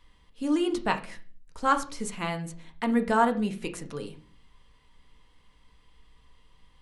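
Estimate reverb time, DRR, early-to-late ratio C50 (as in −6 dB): 0.40 s, 5.5 dB, 13.5 dB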